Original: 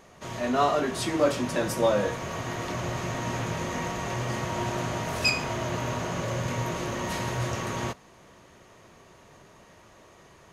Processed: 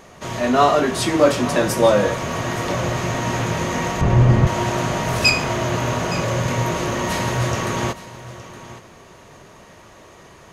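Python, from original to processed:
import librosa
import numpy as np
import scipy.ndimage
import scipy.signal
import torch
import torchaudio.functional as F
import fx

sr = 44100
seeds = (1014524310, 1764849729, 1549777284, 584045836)

p1 = fx.riaa(x, sr, side='playback', at=(4.01, 4.47))
p2 = p1 + fx.echo_single(p1, sr, ms=867, db=-16.0, dry=0)
y = p2 * 10.0 ** (8.5 / 20.0)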